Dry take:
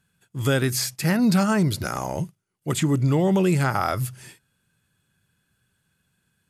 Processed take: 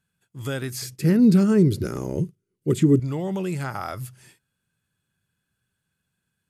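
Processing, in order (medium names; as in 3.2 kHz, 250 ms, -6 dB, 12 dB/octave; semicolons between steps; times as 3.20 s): 0.82–3.00 s: resonant low shelf 550 Hz +9.5 dB, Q 3; trim -7.5 dB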